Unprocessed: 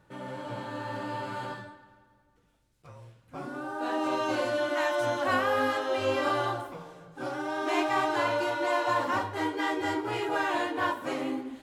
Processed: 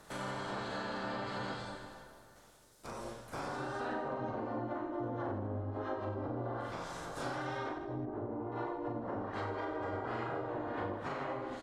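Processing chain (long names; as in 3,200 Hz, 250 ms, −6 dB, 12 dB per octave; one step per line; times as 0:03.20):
ceiling on every frequency bin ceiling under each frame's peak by 21 dB
treble cut that deepens with the level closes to 330 Hz, closed at −23 dBFS
parametric band 2,600 Hz −10.5 dB 1.1 octaves
downward compressor 3 to 1, threshold −49 dBFS, peak gain reduction 15 dB
0:07.69–0:08.52: head-to-tape spacing loss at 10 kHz 36 dB
reverse bouncing-ball delay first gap 40 ms, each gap 1.3×, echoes 5
level +7 dB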